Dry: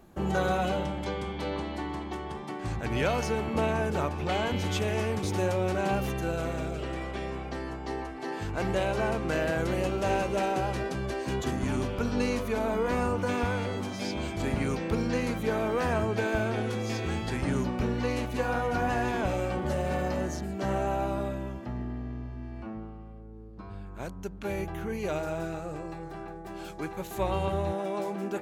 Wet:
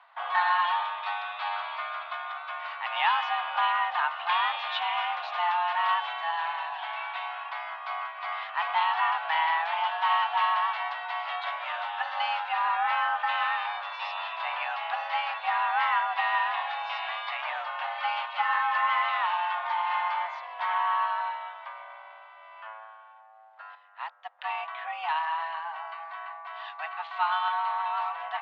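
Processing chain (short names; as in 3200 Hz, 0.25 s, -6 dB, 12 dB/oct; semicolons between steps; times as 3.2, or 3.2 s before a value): mistuned SSB +330 Hz 490–3400 Hz; 23.75–24.39 upward expander 1.5:1, over -54 dBFS; gain +5 dB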